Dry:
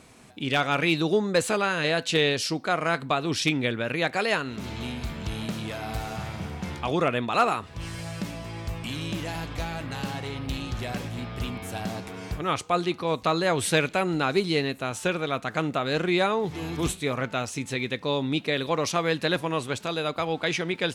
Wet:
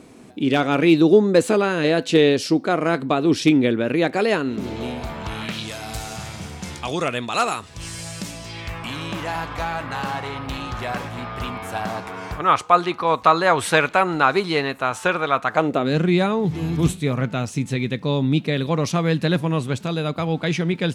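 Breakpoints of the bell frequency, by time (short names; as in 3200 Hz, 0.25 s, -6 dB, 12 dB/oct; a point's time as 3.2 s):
bell +12.5 dB 1.8 oct
4.57 s 310 Hz
5.41 s 1300 Hz
5.71 s 7700 Hz
8.4 s 7700 Hz
8.83 s 1100 Hz
15.49 s 1100 Hz
15.97 s 160 Hz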